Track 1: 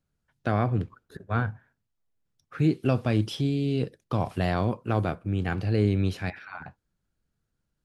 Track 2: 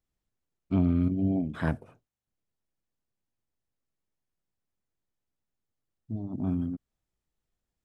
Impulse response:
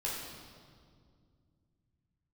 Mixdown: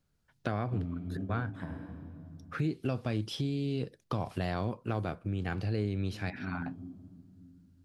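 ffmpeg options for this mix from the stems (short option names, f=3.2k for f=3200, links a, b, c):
-filter_complex "[0:a]equalizer=f=4.7k:t=o:w=0.73:g=3,volume=2.5dB,asplit=2[a][b];[1:a]volume=-8.5dB,asplit=2[c][d];[d]volume=-9dB[e];[b]apad=whole_len=345876[f];[c][f]sidechaingate=range=-33dB:threshold=-43dB:ratio=16:detection=peak[g];[2:a]atrim=start_sample=2205[h];[e][h]afir=irnorm=-1:irlink=0[i];[a][g][i]amix=inputs=3:normalize=0,acompressor=threshold=-34dB:ratio=2.5"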